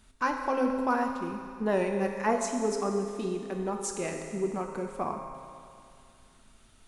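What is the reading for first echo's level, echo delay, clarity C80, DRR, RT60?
no echo, no echo, 5.5 dB, 2.5 dB, 2.4 s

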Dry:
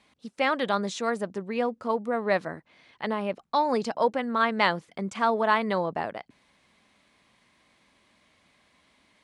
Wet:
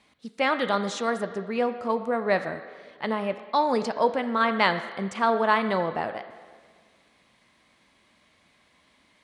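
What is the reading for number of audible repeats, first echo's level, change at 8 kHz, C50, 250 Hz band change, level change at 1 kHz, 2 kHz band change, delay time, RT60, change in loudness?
no echo, no echo, no reading, 10.5 dB, +1.5 dB, +1.5 dB, +1.5 dB, no echo, 1.7 s, +1.5 dB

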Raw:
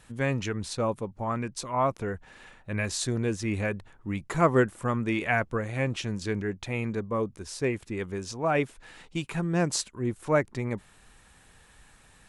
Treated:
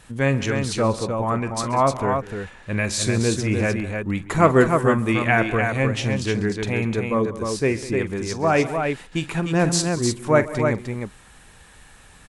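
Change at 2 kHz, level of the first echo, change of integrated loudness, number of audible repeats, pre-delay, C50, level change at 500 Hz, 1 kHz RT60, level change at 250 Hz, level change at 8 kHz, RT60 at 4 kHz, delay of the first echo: +8.0 dB, -14.0 dB, +8.0 dB, 4, no reverb, no reverb, +8.0 dB, no reverb, +8.0 dB, +8.0 dB, no reverb, 44 ms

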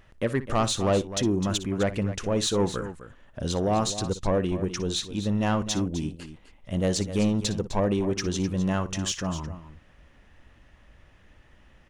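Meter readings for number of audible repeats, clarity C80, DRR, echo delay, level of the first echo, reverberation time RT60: 2, no reverb, no reverb, 59 ms, -15.5 dB, no reverb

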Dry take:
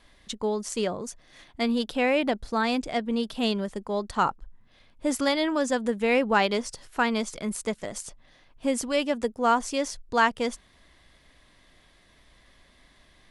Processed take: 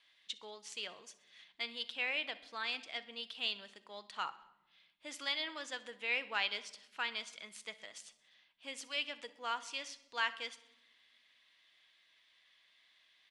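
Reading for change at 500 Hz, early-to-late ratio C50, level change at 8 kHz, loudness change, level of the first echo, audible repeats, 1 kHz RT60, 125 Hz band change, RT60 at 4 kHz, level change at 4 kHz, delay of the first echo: -23.0 dB, 15.5 dB, -15.0 dB, -12.5 dB, -20.5 dB, 4, 0.80 s, under -30 dB, 0.65 s, -4.5 dB, 63 ms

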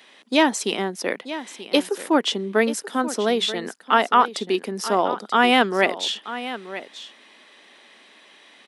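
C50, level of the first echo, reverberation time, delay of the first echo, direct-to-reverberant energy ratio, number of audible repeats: no reverb, -13.5 dB, no reverb, 933 ms, no reverb, 1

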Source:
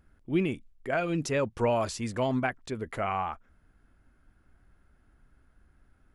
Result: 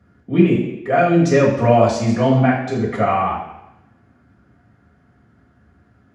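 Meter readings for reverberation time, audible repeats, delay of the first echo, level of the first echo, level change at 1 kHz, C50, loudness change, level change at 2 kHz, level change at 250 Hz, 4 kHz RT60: 0.85 s, no echo, no echo, no echo, +13.5 dB, 4.5 dB, +13.5 dB, +10.0 dB, +15.0 dB, 0.90 s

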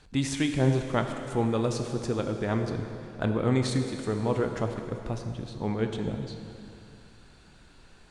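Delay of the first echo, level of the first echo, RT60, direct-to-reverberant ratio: no echo, no echo, 2.8 s, 5.0 dB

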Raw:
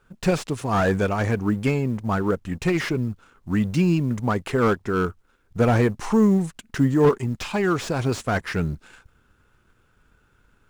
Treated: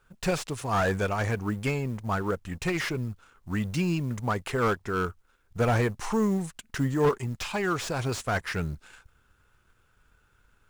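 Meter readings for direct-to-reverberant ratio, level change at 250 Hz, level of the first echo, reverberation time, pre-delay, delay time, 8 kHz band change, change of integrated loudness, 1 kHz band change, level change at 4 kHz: no reverb, -8.0 dB, no echo, no reverb, no reverb, no echo, -0.5 dB, -6.0 dB, -3.5 dB, -2.0 dB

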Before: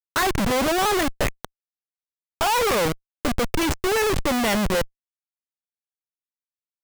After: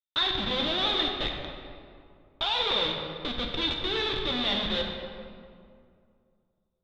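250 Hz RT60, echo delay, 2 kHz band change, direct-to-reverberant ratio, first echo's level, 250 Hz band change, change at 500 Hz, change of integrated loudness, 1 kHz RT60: 2.5 s, no echo, -8.0 dB, 0.5 dB, no echo, -10.0 dB, -10.0 dB, -5.0 dB, 2.2 s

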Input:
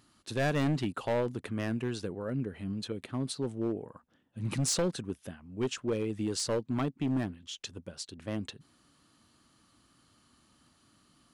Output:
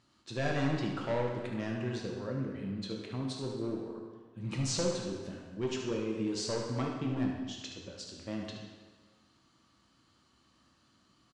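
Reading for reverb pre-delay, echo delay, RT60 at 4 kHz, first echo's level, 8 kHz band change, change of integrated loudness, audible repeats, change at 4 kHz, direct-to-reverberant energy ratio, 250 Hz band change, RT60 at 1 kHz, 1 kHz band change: 3 ms, 73 ms, 1.2 s, -7.5 dB, -4.5 dB, -2.0 dB, 1, -1.5 dB, -1.5 dB, -2.0 dB, 1.5 s, -1.0 dB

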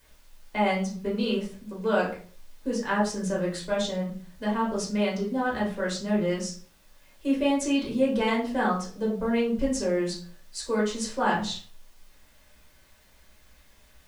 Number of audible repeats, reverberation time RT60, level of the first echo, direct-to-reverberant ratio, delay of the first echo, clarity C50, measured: no echo, 0.45 s, no echo, -5.0 dB, no echo, 7.5 dB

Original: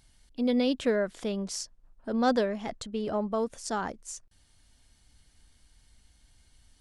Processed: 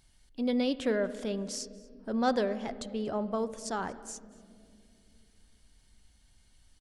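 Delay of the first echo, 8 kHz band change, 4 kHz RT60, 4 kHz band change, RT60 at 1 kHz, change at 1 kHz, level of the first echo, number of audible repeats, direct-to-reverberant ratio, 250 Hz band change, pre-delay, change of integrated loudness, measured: 237 ms, -2.5 dB, 1.3 s, -2.5 dB, 1.8 s, -2.0 dB, -23.5 dB, 1, 11.5 dB, -2.5 dB, 5 ms, -2.5 dB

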